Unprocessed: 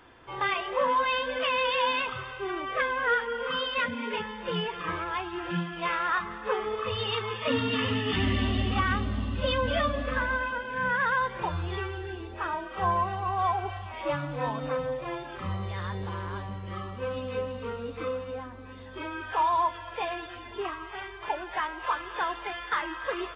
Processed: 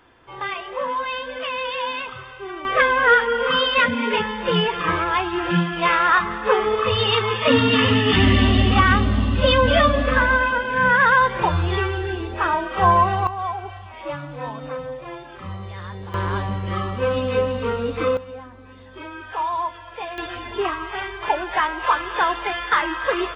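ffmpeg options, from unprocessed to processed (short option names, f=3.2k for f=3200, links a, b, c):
-af "asetnsamples=n=441:p=0,asendcmd='2.65 volume volume 11dB;13.27 volume volume 0dB;16.14 volume volume 11.5dB;18.17 volume volume 0.5dB;20.18 volume volume 10dB',volume=0dB"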